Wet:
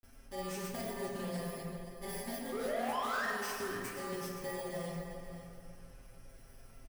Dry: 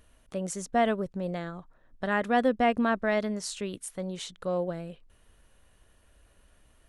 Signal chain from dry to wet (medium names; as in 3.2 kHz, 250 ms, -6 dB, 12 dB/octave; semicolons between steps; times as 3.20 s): bit-reversed sample order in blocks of 32 samples; band-stop 4.4 kHz, Q 26; comb 7.4 ms, depth 93%; compression, threshold -38 dBFS, peak gain reduction 21 dB; painted sound rise, 2.50–3.28 s, 380–1900 Hz -33 dBFS; hard clipper -38.5 dBFS, distortion -7 dB; granulator, spray 33 ms, pitch spread up and down by 0 st; delay 523 ms -12 dB; reverberation RT60 2.5 s, pre-delay 6 ms, DRR -3.5 dB; loudspeaker Doppler distortion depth 0.13 ms